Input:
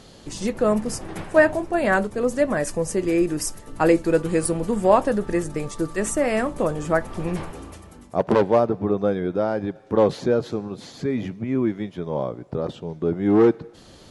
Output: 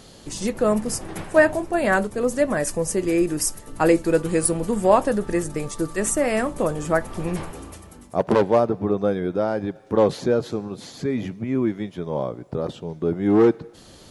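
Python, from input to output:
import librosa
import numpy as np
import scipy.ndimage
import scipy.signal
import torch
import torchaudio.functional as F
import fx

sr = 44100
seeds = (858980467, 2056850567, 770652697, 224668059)

y = fx.high_shelf(x, sr, hz=9100.0, db=10.0)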